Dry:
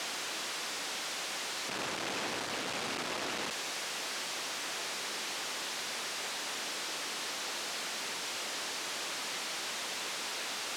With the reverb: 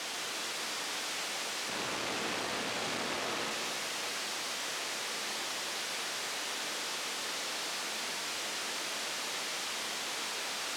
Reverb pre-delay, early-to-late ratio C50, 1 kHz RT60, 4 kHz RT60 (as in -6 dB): 11 ms, 2.5 dB, 3.0 s, 2.8 s